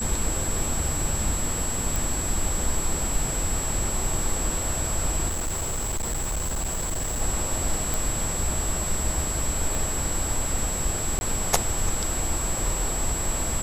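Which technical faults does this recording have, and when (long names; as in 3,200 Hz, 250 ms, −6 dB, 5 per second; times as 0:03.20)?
whistle 7,700 Hz −29 dBFS
0:01.96: click
0:05.28–0:07.22: clipping −24 dBFS
0:07.94: click
0:09.75: click
0:11.19–0:11.21: drop-out 21 ms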